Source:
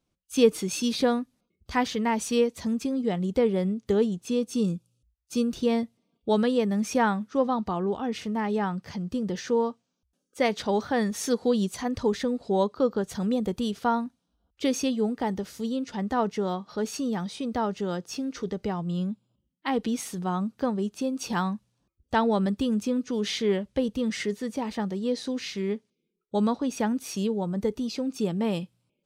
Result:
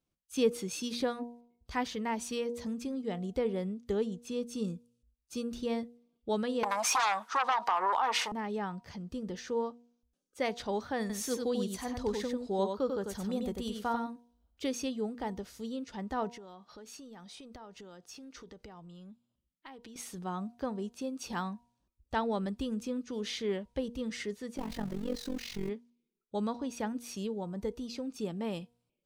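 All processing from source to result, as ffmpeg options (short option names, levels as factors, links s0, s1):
-filter_complex "[0:a]asettb=1/sr,asplit=3[s0][s1][s2];[s0]atrim=end=6.634[s3];[s1]atrim=start=6.63:end=8.32,asetpts=PTS-STARTPTS,afade=t=in:d=0.004:c=qsin,afade=t=out:st=1.686:d=0.004:c=qsin,aeval=exprs='0.266*sin(PI/2*3.98*val(0)/0.266)':c=same,highpass=f=930:t=q:w=3.1,acompressor=threshold=0.141:ratio=5:attack=3.2:release=140:knee=1:detection=peak[s4];[s2]atrim=start=8.316[s5];[s3][s4]acrossfade=d=0.004:c1=hsin:c2=qsin[s6];[s6][s5]acrossfade=d=0.004:c1=qsin:c2=hsin,asettb=1/sr,asplit=3[s7][s8][s9];[s7]atrim=end=11.004[s10];[s8]atrim=start=11:end=14.64,asetpts=PTS-STARTPTS,afade=t=in:d=0.004:c=qsin,afade=t=out:st=3.636:d=0.004:c=qsin,highshelf=f=10000:g=8,aecho=1:1:94:0.562,atrim=end_sample=160524[s11];[s9]atrim=start=14.636[s12];[s10][s11]acrossfade=d=0.004:c1=hsin:c2=qsin[s13];[s13][s12]acrossfade=d=0.004:c1=qsin:c2=hsin,asettb=1/sr,asplit=3[s14][s15][s16];[s14]atrim=end=16.334[s17];[s15]atrim=start=16.33:end=19.96,asetpts=PTS-STARTPTS,afade=t=in:d=0.004:c=qsin,afade=t=out:st=3.626:d=0.004:c=qsin,lowshelf=f=500:g=-4.5,acompressor=threshold=0.0141:ratio=8:attack=3.2:release=140:knee=1:detection=peak[s18];[s16]atrim=start=19.956[s19];[s17][s18]acrossfade=d=0.004:c1=hsin:c2=qsin[s20];[s20][s19]acrossfade=d=0.004:c1=qsin:c2=hsin,asettb=1/sr,asplit=3[s21][s22][s23];[s21]atrim=end=24.574[s24];[s22]atrim=start=24.57:end=25.69,asetpts=PTS-STARTPTS,afade=t=in:d=0.004:c=qsin,afade=t=out:st=1.116:d=0.004:c=qsin,aeval=exprs='val(0)+0.5*0.02*sgn(val(0))':c=same,lowshelf=f=190:g=10,tremolo=f=45:d=0.857[s25];[s23]atrim=start=25.686[s26];[s24][s25]acrossfade=d=0.004:c1=hsin:c2=qsin[s27];[s27][s26]acrossfade=d=0.004:c1=qsin:c2=hsin,asubboost=boost=4:cutoff=60,bandreject=f=238.3:t=h:w=4,bandreject=f=476.6:t=h:w=4,bandreject=f=714.9:t=h:w=4,bandreject=f=953.2:t=h:w=4,volume=0.422"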